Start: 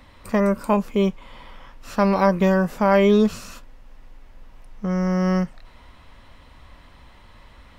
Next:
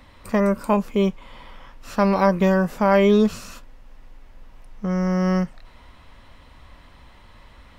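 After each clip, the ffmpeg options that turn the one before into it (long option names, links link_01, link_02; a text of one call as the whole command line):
ffmpeg -i in.wav -af anull out.wav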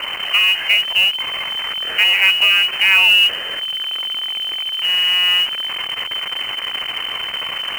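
ffmpeg -i in.wav -af "aeval=exprs='val(0)+0.5*0.0944*sgn(val(0))':channel_layout=same,lowpass=frequency=2600:width_type=q:width=0.5098,lowpass=frequency=2600:width_type=q:width=0.6013,lowpass=frequency=2600:width_type=q:width=0.9,lowpass=frequency=2600:width_type=q:width=2.563,afreqshift=-3100,acrusher=bits=5:mode=log:mix=0:aa=0.000001,volume=2dB" out.wav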